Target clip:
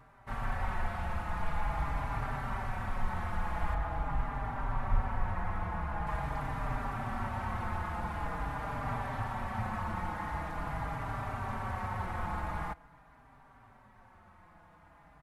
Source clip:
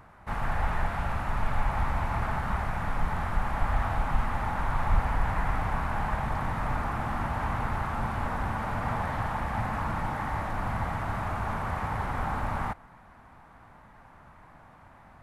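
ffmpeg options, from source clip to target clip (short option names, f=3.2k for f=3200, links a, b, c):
-filter_complex "[0:a]asettb=1/sr,asplit=3[a][b][c];[a]atrim=end=3.744[d];[b]atrim=start=3.74:end=6.07,asetpts=PTS-STARTPTS,afade=t=in:d=0.004:c=qsin,afade=t=out:st=2.326:d=0.004:c=qsin,highshelf=f=2.7k:g=-9.5[e];[c]atrim=start=6.066[f];[d][e]acrossfade=d=0.004:c1=hsin:c2=qsin[g];[g][f]acrossfade=d=0.004:c1=qsin:c2=hsin,asplit=2[h][i];[i]adelay=4.6,afreqshift=-0.45[j];[h][j]amix=inputs=2:normalize=1,volume=-2.5dB"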